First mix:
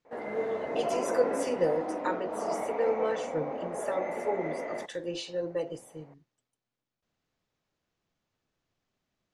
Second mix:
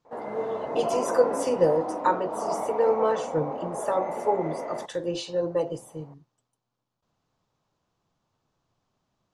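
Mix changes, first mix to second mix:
speech +4.5 dB; master: add graphic EQ 125/1000/2000 Hz +5/+8/-7 dB

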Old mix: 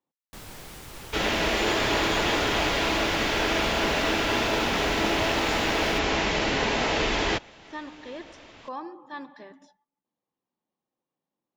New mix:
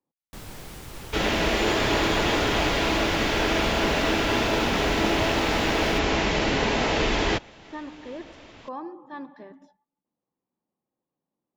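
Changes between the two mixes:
speech: add high shelf 2500 Hz -11 dB; master: add low shelf 440 Hz +4.5 dB

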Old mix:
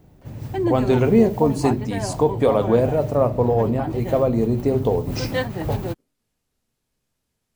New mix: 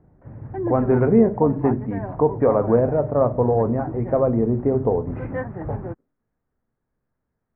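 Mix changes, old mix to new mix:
background -4.0 dB; master: add steep low-pass 1800 Hz 36 dB/oct

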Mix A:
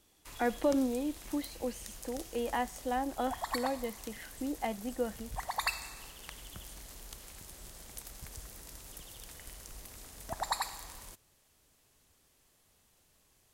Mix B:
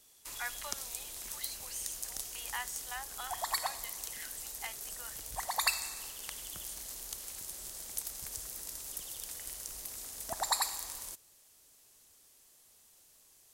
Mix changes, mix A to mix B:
speech: add HPF 1100 Hz 24 dB/oct; master: add tone controls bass -7 dB, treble +9 dB

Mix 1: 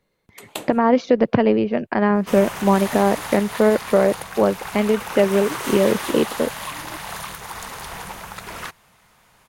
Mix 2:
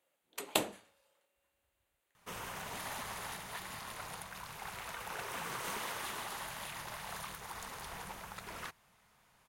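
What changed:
speech: muted; second sound -12.0 dB

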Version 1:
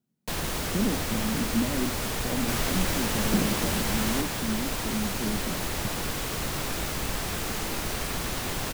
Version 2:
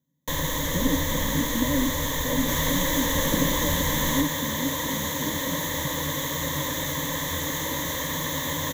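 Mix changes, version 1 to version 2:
second sound: add HPF 89 Hz 12 dB/oct; master: add ripple EQ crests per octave 1.1, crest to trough 17 dB

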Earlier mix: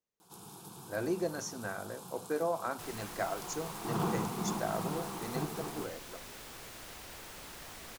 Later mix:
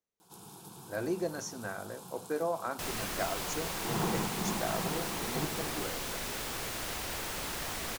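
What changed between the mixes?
first sound: add notch 1200 Hz, Q 17; second sound +10.5 dB

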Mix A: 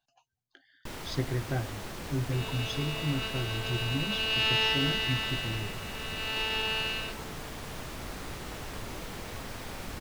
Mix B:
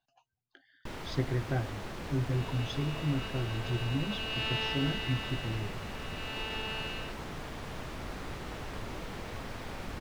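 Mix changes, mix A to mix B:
second sound -5.5 dB; master: add high shelf 5600 Hz -11.5 dB

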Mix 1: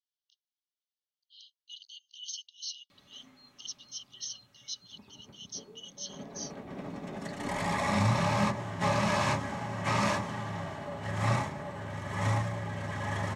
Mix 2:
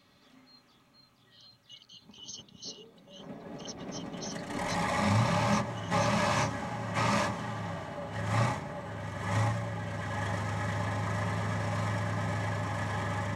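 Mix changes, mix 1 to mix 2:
speech -4.0 dB; background: entry -2.90 s

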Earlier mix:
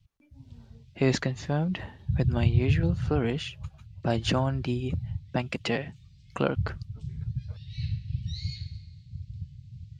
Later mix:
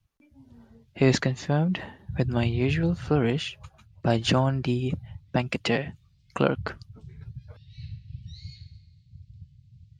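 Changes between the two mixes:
speech +3.5 dB; background -8.0 dB

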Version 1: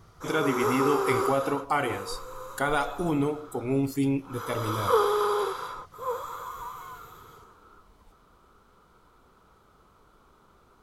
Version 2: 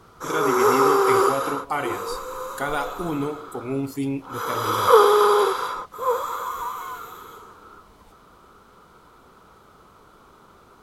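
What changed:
background +9.0 dB; master: add low shelf 65 Hz -10 dB

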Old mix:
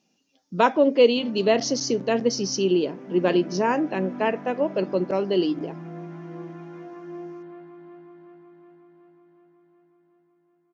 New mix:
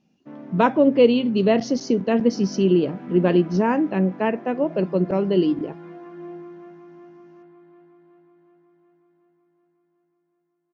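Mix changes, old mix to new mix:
speech: add tone controls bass +12 dB, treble -11 dB; background: entry -0.90 s

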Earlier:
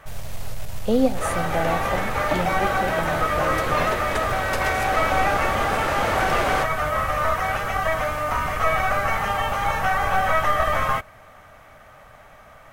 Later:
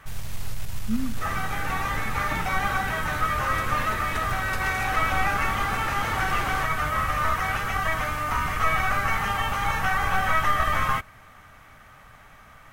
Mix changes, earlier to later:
speech: add double band-pass 590 Hz, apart 2.8 oct; second sound -6.5 dB; master: add bell 600 Hz -10.5 dB 0.82 oct

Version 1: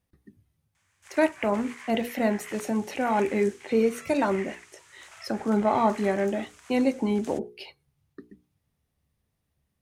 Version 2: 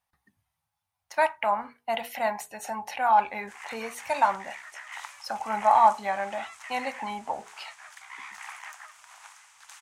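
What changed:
background: entry +2.45 s; master: add resonant low shelf 560 Hz -14 dB, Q 3

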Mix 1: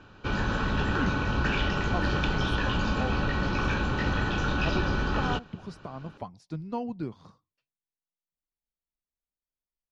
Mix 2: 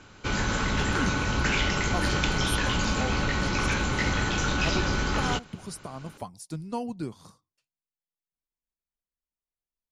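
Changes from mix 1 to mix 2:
background: remove Butterworth band-stop 2100 Hz, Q 6.2; master: remove air absorption 210 m

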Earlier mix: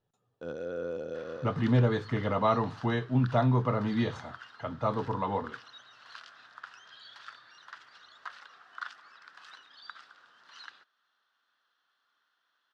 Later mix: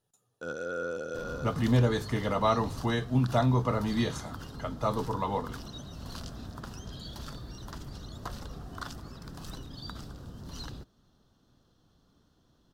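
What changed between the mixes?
first sound: add bell 1400 Hz +13 dB 0.24 oct; second sound: remove resonant high-pass 1600 Hz, resonance Q 2; master: remove LPF 3000 Hz 12 dB/oct

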